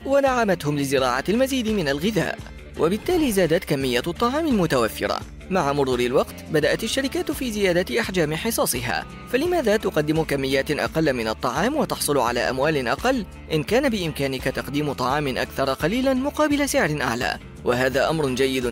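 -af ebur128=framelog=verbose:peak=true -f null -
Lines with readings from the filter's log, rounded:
Integrated loudness:
  I:         -22.3 LUFS
  Threshold: -32.3 LUFS
Loudness range:
  LRA:         0.9 LU
  Threshold: -42.4 LUFS
  LRA low:   -22.9 LUFS
  LRA high:  -22.0 LUFS
True peak:
  Peak:       -8.5 dBFS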